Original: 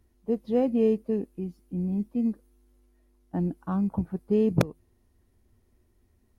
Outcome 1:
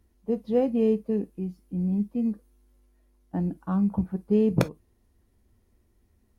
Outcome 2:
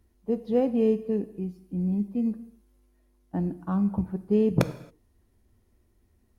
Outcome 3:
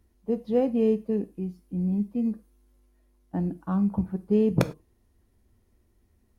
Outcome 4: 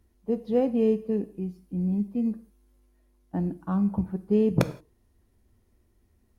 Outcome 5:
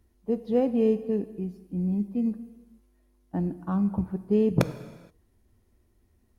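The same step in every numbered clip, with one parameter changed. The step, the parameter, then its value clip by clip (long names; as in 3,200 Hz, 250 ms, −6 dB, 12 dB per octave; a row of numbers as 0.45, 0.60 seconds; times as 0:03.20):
reverb whose tail is shaped and stops, gate: 80, 300, 130, 200, 500 milliseconds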